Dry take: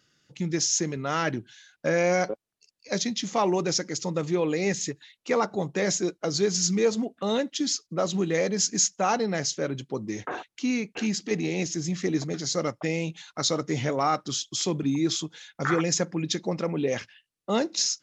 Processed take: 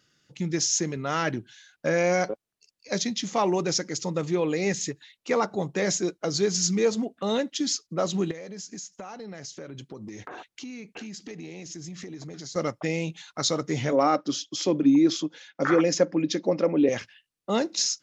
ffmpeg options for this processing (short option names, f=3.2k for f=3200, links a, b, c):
-filter_complex "[0:a]asettb=1/sr,asplit=3[a][b][c];[a]atrim=end=8.314[d];[b]atrim=start=8.31:end=12.56,asetpts=PTS-STARTPTS,afade=t=in:d=0.004:c=qsin,afade=t=out:st=4.246:d=0.004:c=qsin,acompressor=threshold=-35dB:ratio=16:attack=3.2:release=140:knee=1:detection=peak[e];[c]atrim=start=12.556[f];[d][e]acrossfade=d=0.004:c1=hsin:c2=qsin[g];[g][f]acrossfade=d=0.004:c1=qsin:c2=hsin,asettb=1/sr,asplit=3[h][i][j];[h]atrim=end=13.924[k];[i]atrim=start=13.92:end=16.89,asetpts=PTS-STARTPTS,afade=t=in:d=0.004:c=qsin,afade=t=out:st=2.966:d=0.004:c=qsin,highpass=180,equalizer=f=290:t=q:w=4:g=10,equalizer=f=550:t=q:w=4:g=9,equalizer=f=3.8k:t=q:w=4:g=-4,lowpass=f=6.1k:w=0.5412,lowpass=f=6.1k:w=1.3066[l];[j]atrim=start=16.886[m];[k][l]acrossfade=d=0.004:c1=hsin:c2=qsin[n];[n][m]acrossfade=d=0.004:c1=qsin:c2=hsin"